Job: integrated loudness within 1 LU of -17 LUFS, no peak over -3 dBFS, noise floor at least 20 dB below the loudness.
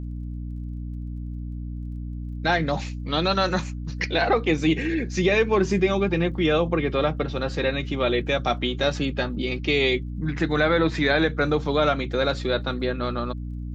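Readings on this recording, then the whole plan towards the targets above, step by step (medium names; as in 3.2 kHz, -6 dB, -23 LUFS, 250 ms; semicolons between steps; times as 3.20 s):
tick rate 25 per s; hum 60 Hz; highest harmonic 300 Hz; hum level -29 dBFS; loudness -23.5 LUFS; peak level -8.5 dBFS; loudness target -17.0 LUFS
-> de-click; de-hum 60 Hz, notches 5; trim +6.5 dB; peak limiter -3 dBFS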